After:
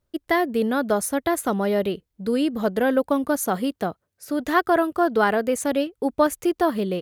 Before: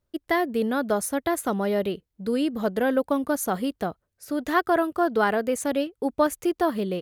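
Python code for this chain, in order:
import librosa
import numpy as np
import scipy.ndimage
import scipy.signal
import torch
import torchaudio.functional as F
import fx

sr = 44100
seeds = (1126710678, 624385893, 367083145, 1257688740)

y = fx.highpass(x, sr, hz=91.0, slope=12, at=(3.45, 4.4))
y = F.gain(torch.from_numpy(y), 2.5).numpy()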